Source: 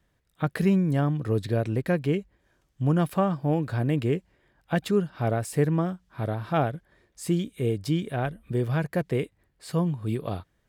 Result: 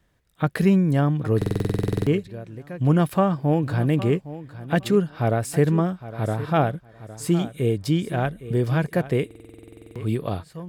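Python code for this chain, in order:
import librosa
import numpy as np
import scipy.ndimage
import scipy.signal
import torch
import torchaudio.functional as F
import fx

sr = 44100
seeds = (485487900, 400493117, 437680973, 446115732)

y = fx.echo_feedback(x, sr, ms=811, feedback_pct=19, wet_db=-15)
y = fx.buffer_glitch(y, sr, at_s=(1.37, 9.26), block=2048, repeats=14)
y = F.gain(torch.from_numpy(y), 4.0).numpy()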